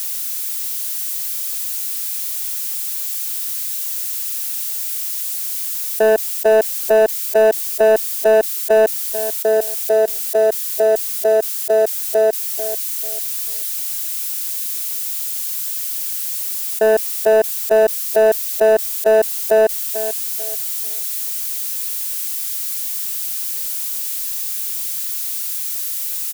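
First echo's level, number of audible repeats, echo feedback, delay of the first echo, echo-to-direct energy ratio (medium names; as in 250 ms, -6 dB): -12.0 dB, 3, 30%, 442 ms, -11.5 dB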